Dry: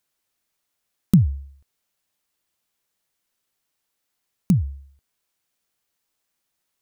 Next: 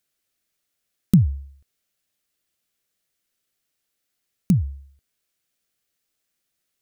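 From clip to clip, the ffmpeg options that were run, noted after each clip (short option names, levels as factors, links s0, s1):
-af "equalizer=f=940:w=2.6:g=-9.5"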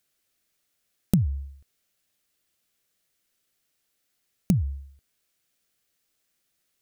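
-af "acompressor=threshold=0.0794:ratio=4,volume=1.33"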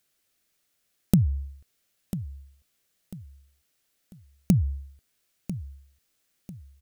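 -af "aecho=1:1:995|1990|2985:0.237|0.0806|0.0274,volume=1.19"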